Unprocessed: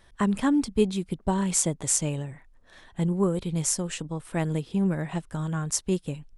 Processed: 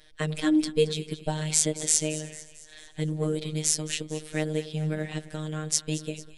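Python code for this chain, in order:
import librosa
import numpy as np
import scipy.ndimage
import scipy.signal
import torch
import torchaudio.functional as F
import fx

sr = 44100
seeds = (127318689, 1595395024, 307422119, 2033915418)

y = fx.graphic_eq(x, sr, hz=(125, 500, 1000, 2000, 4000), db=(-10, 6, -11, 4, 8))
y = fx.echo_split(y, sr, split_hz=880.0, low_ms=97, high_ms=223, feedback_pct=52, wet_db=-15.5)
y = fx.robotise(y, sr, hz=154.0)
y = y * librosa.db_to_amplitude(1.5)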